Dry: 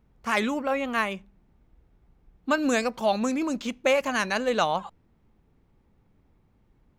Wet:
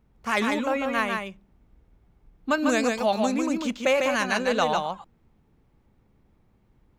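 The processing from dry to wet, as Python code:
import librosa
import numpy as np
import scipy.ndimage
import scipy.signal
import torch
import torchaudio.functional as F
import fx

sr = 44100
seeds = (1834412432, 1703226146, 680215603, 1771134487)

y = x + 10.0 ** (-4.0 / 20.0) * np.pad(x, (int(148 * sr / 1000.0), 0))[:len(x)]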